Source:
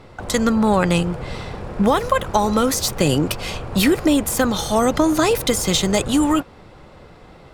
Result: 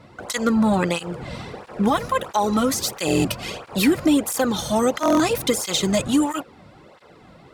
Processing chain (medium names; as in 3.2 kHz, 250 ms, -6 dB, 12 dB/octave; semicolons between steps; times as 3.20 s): buffer glitch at 3.06/5.01 s, samples 1024, times 7; cancelling through-zero flanger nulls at 1.5 Hz, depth 2.7 ms